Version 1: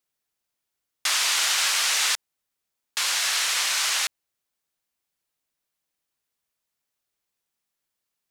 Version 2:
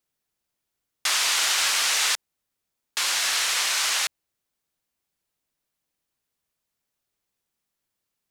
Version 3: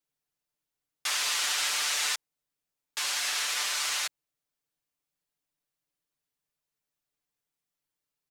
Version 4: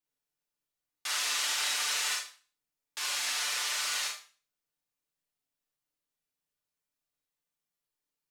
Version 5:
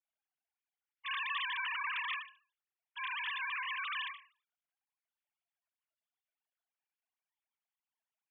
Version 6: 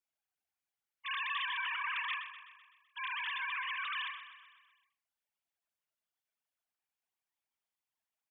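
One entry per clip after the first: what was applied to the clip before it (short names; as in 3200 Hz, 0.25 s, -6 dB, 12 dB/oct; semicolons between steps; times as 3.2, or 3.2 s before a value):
low shelf 440 Hz +6 dB
comb 6.8 ms, depth 73%; gain -8 dB
Schroeder reverb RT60 0.39 s, combs from 26 ms, DRR -0.5 dB; gain -5.5 dB
sine-wave speech; gain -6 dB
feedback echo 0.127 s, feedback 57%, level -12 dB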